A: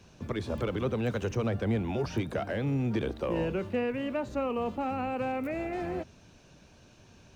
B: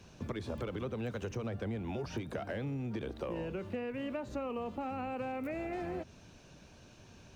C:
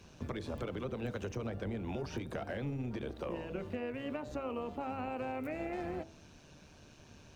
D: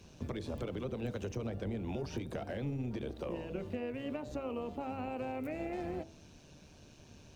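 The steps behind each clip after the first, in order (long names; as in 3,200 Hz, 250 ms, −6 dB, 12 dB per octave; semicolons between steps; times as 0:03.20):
downward compressor, threshold −35 dBFS, peak gain reduction 10 dB
hum removal 54.67 Hz, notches 16; amplitude modulation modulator 150 Hz, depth 35%; level +2 dB
parametric band 1,400 Hz −5.5 dB 1.5 octaves; level +1 dB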